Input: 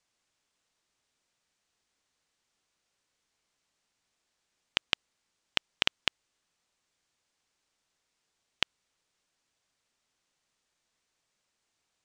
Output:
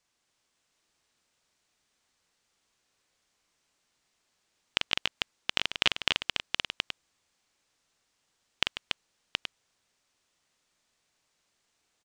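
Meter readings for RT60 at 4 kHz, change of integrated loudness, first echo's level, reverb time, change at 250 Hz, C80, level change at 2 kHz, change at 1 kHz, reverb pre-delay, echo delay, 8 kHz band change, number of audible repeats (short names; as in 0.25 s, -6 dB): none, +1.5 dB, -5.5 dB, none, +4.5 dB, none, +4.5 dB, +4.5 dB, none, 43 ms, +4.5 dB, 5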